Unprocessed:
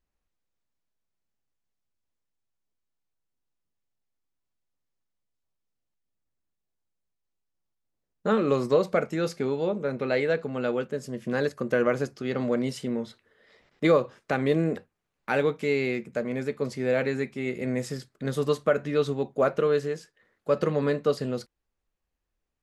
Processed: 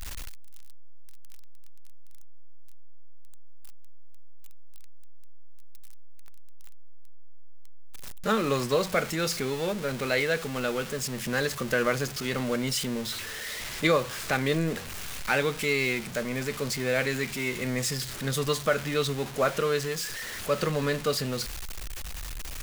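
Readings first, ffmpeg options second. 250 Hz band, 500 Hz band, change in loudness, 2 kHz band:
-2.5 dB, -3.5 dB, -1.0 dB, +4.5 dB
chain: -af "aeval=exprs='val(0)+0.5*0.0188*sgn(val(0))':c=same,equalizer=f=360:w=0.31:g=-12.5,volume=2.37"

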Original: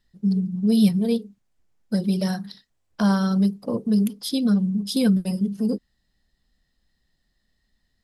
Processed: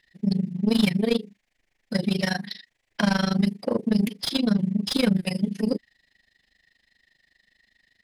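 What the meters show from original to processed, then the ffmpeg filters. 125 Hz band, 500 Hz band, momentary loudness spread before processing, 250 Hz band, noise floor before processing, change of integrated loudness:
-2.5 dB, +1.0 dB, 8 LU, -3.0 dB, -72 dBFS, -2.0 dB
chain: -filter_complex "[0:a]highshelf=f=1600:t=q:w=3:g=6.5,asplit=2[s0][s1];[s1]highpass=f=720:p=1,volume=8.91,asoftclip=type=tanh:threshold=0.447[s2];[s0][s2]amix=inputs=2:normalize=0,lowpass=f=1600:p=1,volume=0.501,tremolo=f=25:d=0.919"

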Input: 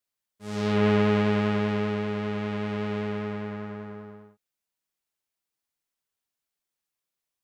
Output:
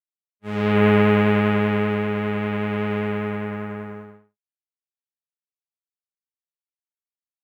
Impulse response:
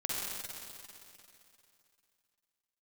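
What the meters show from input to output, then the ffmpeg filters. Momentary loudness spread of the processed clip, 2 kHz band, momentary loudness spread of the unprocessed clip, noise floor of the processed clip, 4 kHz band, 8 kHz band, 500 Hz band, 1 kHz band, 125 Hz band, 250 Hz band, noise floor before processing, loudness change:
17 LU, +8.0 dB, 17 LU, under -85 dBFS, +3.0 dB, no reading, +5.5 dB, +6.5 dB, +5.5 dB, +5.5 dB, under -85 dBFS, +6.0 dB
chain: -af "acrusher=bits=7:mode=log:mix=0:aa=0.000001,highshelf=f=3600:t=q:w=1.5:g=-12.5,agate=range=0.0224:threshold=0.0141:ratio=3:detection=peak,volume=1.88"

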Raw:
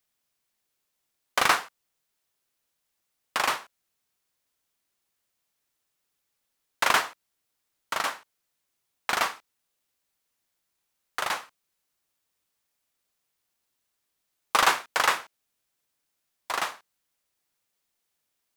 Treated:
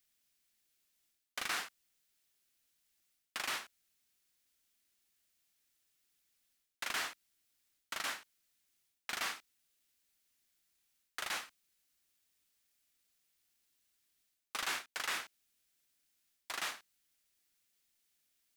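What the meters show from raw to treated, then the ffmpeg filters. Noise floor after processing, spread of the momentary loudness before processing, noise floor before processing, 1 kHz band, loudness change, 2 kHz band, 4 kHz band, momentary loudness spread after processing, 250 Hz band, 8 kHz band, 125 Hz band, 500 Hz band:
-84 dBFS, 12 LU, -80 dBFS, -17.5 dB, -13.0 dB, -12.0 dB, -10.0 dB, 12 LU, -13.5 dB, -9.5 dB, -15.5 dB, -17.5 dB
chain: -af "equalizer=f=125:t=o:w=1:g=-7,equalizer=f=500:t=o:w=1:g=-7,equalizer=f=1000:t=o:w=1:g=-9,areverse,acompressor=threshold=0.0126:ratio=5,areverse,volume=1.19"

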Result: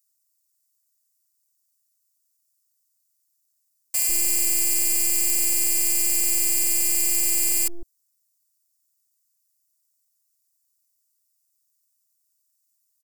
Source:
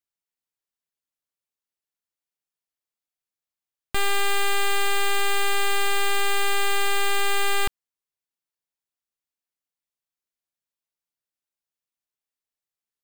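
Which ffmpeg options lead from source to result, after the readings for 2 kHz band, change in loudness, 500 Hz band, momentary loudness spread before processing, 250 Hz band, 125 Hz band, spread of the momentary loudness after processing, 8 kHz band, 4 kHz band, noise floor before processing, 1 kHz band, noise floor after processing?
-11.0 dB, +5.0 dB, -13.0 dB, 2 LU, +2.0 dB, no reading, 2 LU, +12.0 dB, -5.0 dB, under -85 dBFS, under -20 dB, -73 dBFS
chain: -filter_complex "[0:a]alimiter=level_in=1.26:limit=0.0631:level=0:latency=1,volume=0.794,acrossover=split=530[s0][s1];[s0]adelay=150[s2];[s2][s1]amix=inputs=2:normalize=0,afftfilt=real='hypot(re,im)*cos(PI*b)':imag='0':win_size=512:overlap=0.75,aexciter=amount=10.6:drive=5.7:freq=4700"

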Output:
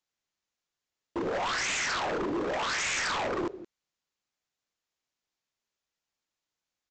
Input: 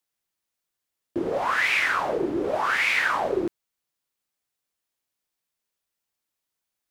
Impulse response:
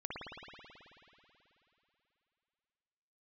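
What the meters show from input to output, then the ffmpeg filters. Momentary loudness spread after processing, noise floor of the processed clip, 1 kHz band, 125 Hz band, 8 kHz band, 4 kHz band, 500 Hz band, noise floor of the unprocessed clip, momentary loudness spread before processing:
8 LU, under -85 dBFS, -6.0 dB, -2.0 dB, +7.5 dB, -1.0 dB, -5.5 dB, -84 dBFS, 9 LU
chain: -af "acontrast=74,aecho=1:1:168:0.141,aresample=16000,aeval=exprs='0.133*(abs(mod(val(0)/0.133+3,4)-2)-1)':c=same,aresample=44100,volume=0.398"

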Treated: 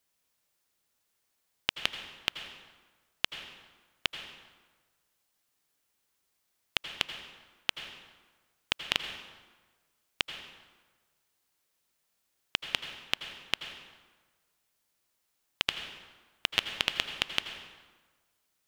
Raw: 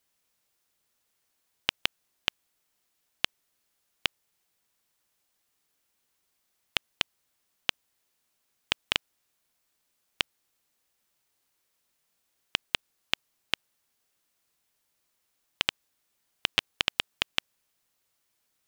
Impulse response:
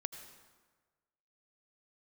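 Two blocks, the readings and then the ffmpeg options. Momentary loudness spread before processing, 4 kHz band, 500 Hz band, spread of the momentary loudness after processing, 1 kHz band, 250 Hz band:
5 LU, -1.5 dB, -1.0 dB, 18 LU, -1.0 dB, -1.0 dB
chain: -filter_complex "[1:a]atrim=start_sample=2205[s0];[0:a][s0]afir=irnorm=-1:irlink=0"

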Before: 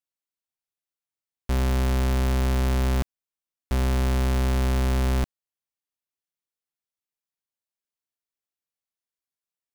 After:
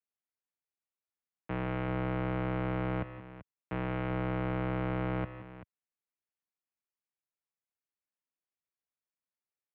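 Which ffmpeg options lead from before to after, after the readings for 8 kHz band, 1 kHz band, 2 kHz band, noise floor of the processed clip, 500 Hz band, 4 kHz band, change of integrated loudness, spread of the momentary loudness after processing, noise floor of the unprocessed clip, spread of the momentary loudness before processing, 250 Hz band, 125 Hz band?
under -40 dB, -4.5 dB, -5.5 dB, under -85 dBFS, -4.5 dB, -16.0 dB, -9.5 dB, 15 LU, under -85 dBFS, 6 LU, -5.5 dB, -10.5 dB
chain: -af "aecho=1:1:153|175|386:0.119|0.178|0.188,highpass=f=160:t=q:w=0.5412,highpass=f=160:t=q:w=1.307,lowpass=f=2700:t=q:w=0.5176,lowpass=f=2700:t=q:w=0.7071,lowpass=f=2700:t=q:w=1.932,afreqshift=-76,volume=0.631"

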